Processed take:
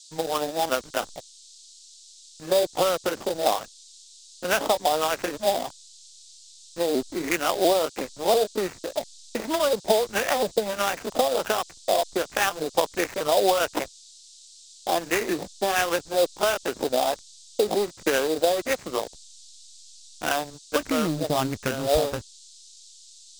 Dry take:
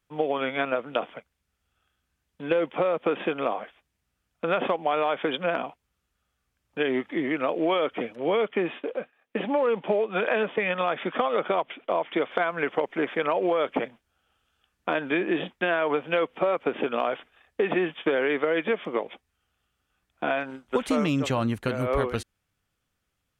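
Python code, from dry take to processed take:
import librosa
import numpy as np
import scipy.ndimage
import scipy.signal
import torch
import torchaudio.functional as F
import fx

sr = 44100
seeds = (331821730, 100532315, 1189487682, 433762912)

y = fx.pitch_ramps(x, sr, semitones=3.0, every_ms=695)
y = fx.filter_lfo_lowpass(y, sr, shape='sine', hz=1.4, low_hz=650.0, high_hz=2200.0, q=2.6)
y = fx.sample_hold(y, sr, seeds[0], rate_hz=4300.0, jitter_pct=20)
y = fx.backlash(y, sr, play_db=-32.0)
y = fx.dmg_noise_band(y, sr, seeds[1], low_hz=3600.0, high_hz=8300.0, level_db=-50.0)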